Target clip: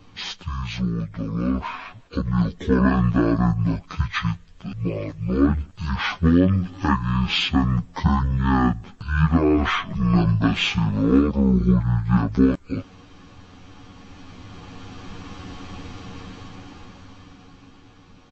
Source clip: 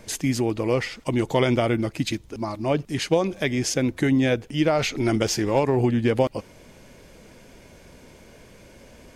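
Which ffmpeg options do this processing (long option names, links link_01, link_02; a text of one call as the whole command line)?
ffmpeg -i in.wav -af "aecho=1:1:5.4:0.87,dynaudnorm=framelen=170:gausssize=13:maxgain=16.5dB,asetrate=22050,aresample=44100,volume=-4.5dB" out.wav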